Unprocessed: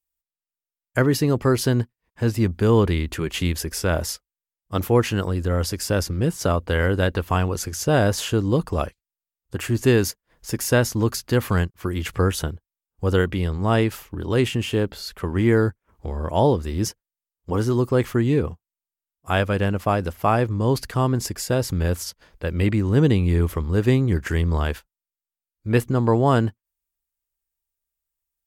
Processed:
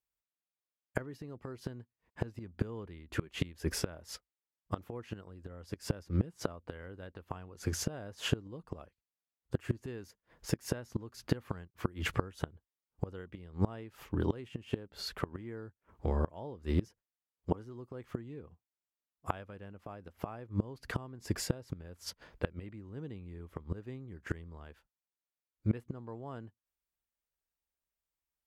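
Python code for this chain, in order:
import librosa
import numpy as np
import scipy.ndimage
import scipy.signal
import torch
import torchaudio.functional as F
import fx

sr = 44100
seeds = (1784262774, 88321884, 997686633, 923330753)

y = fx.highpass(x, sr, hz=66.0, slope=6)
y = fx.high_shelf(y, sr, hz=4500.0, db=-11.0)
y = fx.gate_flip(y, sr, shuts_db=-16.0, range_db=-25)
y = y * librosa.db_to_amplitude(-1.0)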